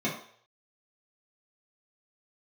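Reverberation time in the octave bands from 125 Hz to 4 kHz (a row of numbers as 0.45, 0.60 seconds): 0.55, 0.40, 0.60, 0.55, 0.55, 0.60 seconds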